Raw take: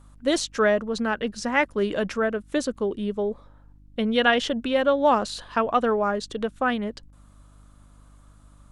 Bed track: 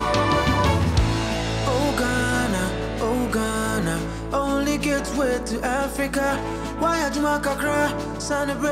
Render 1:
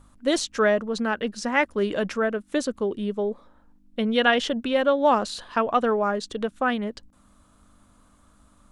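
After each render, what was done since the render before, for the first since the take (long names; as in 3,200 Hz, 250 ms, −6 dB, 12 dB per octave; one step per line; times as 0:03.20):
hum removal 50 Hz, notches 3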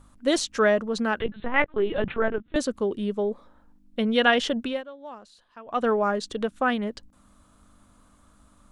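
0:01.20–0:02.56: linear-prediction vocoder at 8 kHz pitch kept
0:04.62–0:05.87: duck −21.5 dB, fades 0.22 s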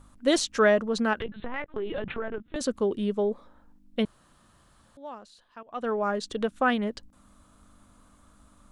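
0:01.13–0:02.61: downward compressor 5 to 1, threshold −28 dBFS
0:04.05–0:04.97: fill with room tone
0:05.63–0:06.72: fade in equal-power, from −13.5 dB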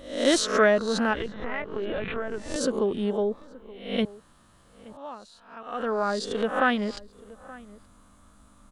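peak hold with a rise ahead of every peak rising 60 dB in 0.53 s
slap from a distant wall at 150 metres, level −20 dB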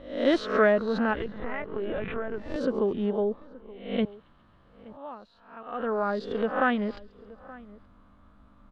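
high-frequency loss of the air 350 metres
delay with a high-pass on its return 136 ms, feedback 61%, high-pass 5,400 Hz, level −15.5 dB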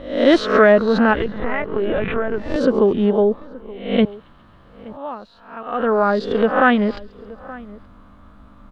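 level +11 dB
brickwall limiter −3 dBFS, peak gain reduction 2.5 dB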